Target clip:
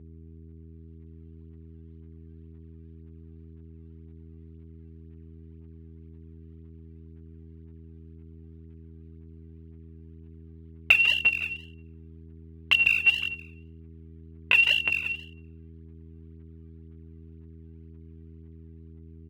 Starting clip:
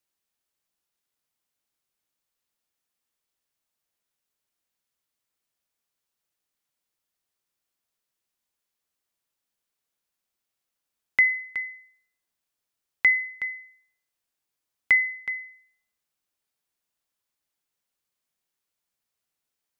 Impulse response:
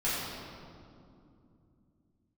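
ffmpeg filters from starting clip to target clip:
-filter_complex "[0:a]asplit=2[s0][s1];[s1]aecho=0:1:162:0.376[s2];[s0][s2]amix=inputs=2:normalize=0,dynaudnorm=f=380:g=5:m=2,lowpass=f=2100:w=0.5412,lowpass=f=2100:w=1.3066,bandreject=f=60:t=h:w=6,bandreject=f=120:t=h:w=6,bandreject=f=180:t=h:w=6,bandreject=f=240:t=h:w=6,bandreject=f=300:t=h:w=6,bandreject=f=360:t=h:w=6,bandreject=f=420:t=h:w=6,bandreject=f=480:t=h:w=6,bandreject=f=540:t=h:w=6,bandreject=f=600:t=h:w=6,asplit=2[s3][s4];[s4]adelay=12,volume=0.794[s5];[s3][s5]amix=inputs=2:normalize=0,acompressor=threshold=0.0794:ratio=3,aphaser=in_gain=1:out_gain=1:delay=3.5:decay=0.75:speed=1.9:type=sinusoidal,aeval=exprs='val(0)+0.00562*(sin(2*PI*60*n/s)+sin(2*PI*2*60*n/s)/2+sin(2*PI*3*60*n/s)/3+sin(2*PI*4*60*n/s)/4+sin(2*PI*5*60*n/s)/5)':c=same,asetrate=59535,aresample=44100,highpass=46,atempo=0.76"

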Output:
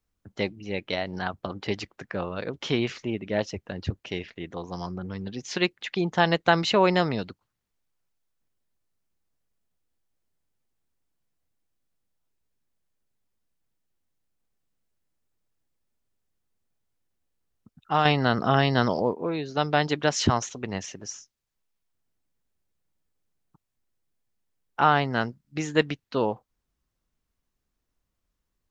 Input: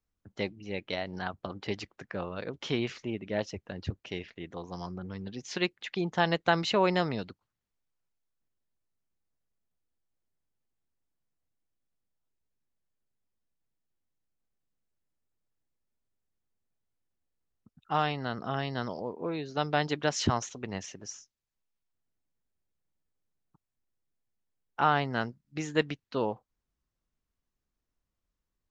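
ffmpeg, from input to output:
-filter_complex "[0:a]asettb=1/sr,asplit=3[s0][s1][s2];[s0]atrim=end=18.054[s3];[s1]atrim=start=18.05:end=19.14,asetpts=PTS-STARTPTS,afade=t=in:d=0.004:c=qsin,afade=t=out:st=1.086:d=0.004:c=qsin,acontrast=69[s4];[s2]atrim=start=19.136[s5];[s3][s4]acrossfade=d=0.004:c1=hsin:c2=qsin[s6];[s6][s5]acrossfade=d=0.004:c1=qsin:c2=hsin,volume=1.78"

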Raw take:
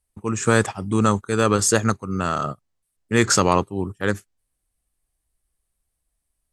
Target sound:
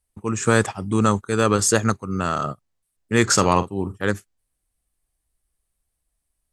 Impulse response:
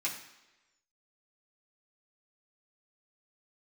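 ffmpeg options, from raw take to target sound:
-filter_complex "[0:a]asettb=1/sr,asplit=3[s0][s1][s2];[s0]atrim=end=3.334[s3];[s1]atrim=start=3.33:end=3.99,asetpts=PTS-STARTPTS,afade=t=in:d=0.004:c=qsin,afade=t=out:st=0.656:d=0.004:c=qsin,asplit=2[s4][s5];[s5]adelay=46,volume=0.237[s6];[s4][s6]amix=inputs=2:normalize=0,atrim=end_sample=29106[s7];[s2]atrim=start=3.986[s8];[s3][s7]acrossfade=d=0.004:c1=hsin:c2=qsin[s9];[s9][s8]acrossfade=d=0.004:c1=qsin:c2=hsin"

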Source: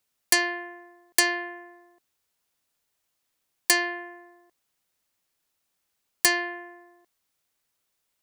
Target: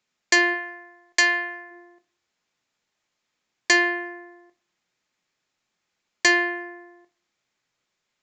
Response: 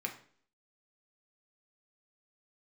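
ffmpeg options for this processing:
-filter_complex "[0:a]asplit=3[s0][s1][s2];[s0]afade=t=out:st=0.53:d=0.02[s3];[s1]equalizer=f=260:t=o:w=1.5:g=-12,afade=t=in:st=0.53:d=0.02,afade=t=out:st=1.7:d=0.02[s4];[s2]afade=t=in:st=1.7:d=0.02[s5];[s3][s4][s5]amix=inputs=3:normalize=0,asplit=2[s6][s7];[1:a]atrim=start_sample=2205,lowpass=6100,lowshelf=f=71:g=9[s8];[s7][s8]afir=irnorm=-1:irlink=0,volume=0.708[s9];[s6][s9]amix=inputs=2:normalize=0,aresample=16000,aresample=44100"

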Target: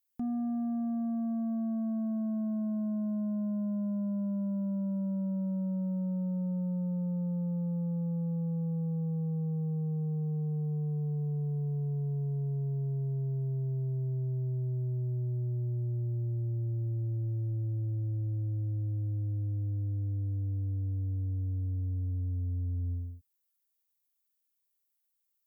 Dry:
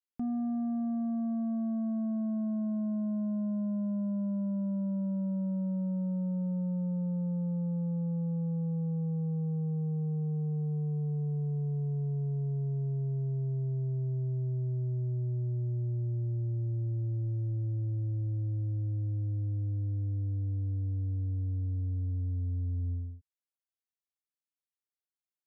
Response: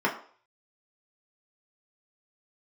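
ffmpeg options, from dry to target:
-af "aemphasis=mode=production:type=50fm"

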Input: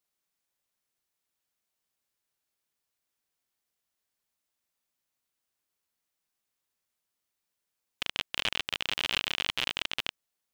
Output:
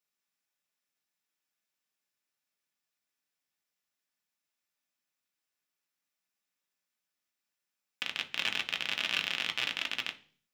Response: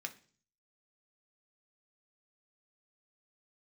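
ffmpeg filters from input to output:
-filter_complex "[1:a]atrim=start_sample=2205,afade=t=out:st=0.44:d=0.01,atrim=end_sample=19845[s0];[0:a][s0]afir=irnorm=-1:irlink=0"

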